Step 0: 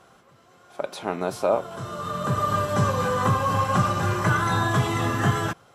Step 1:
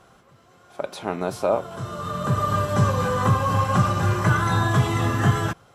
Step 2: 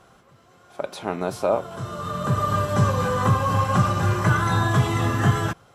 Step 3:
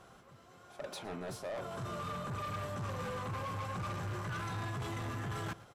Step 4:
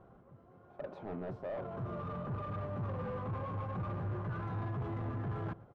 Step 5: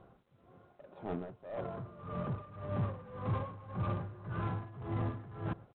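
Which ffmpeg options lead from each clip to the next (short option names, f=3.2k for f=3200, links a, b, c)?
-af "lowshelf=f=110:g=8.5"
-af anull
-af "areverse,acompressor=threshold=-26dB:ratio=6,areverse,asoftclip=type=tanh:threshold=-32dB,aecho=1:1:115:0.106,volume=-4dB"
-af "adynamicsmooth=sensitivity=1.5:basefreq=820,volume=2.5dB"
-filter_complex "[0:a]tremolo=f=1.8:d=0.8,asplit=2[a][b];[b]acrusher=bits=5:mix=0:aa=0.5,volume=-5dB[c];[a][c]amix=inputs=2:normalize=0,volume=1dB" -ar 8000 -c:a adpcm_g726 -b:a 32k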